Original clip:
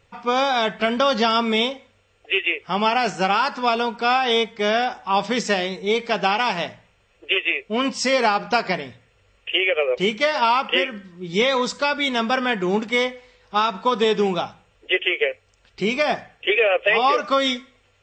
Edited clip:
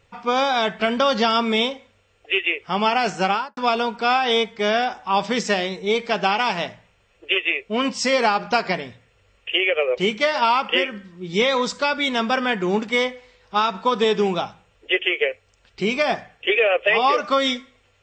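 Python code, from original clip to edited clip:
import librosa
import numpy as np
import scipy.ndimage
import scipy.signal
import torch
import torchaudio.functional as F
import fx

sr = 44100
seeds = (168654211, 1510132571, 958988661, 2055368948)

y = fx.studio_fade_out(x, sr, start_s=3.28, length_s=0.29)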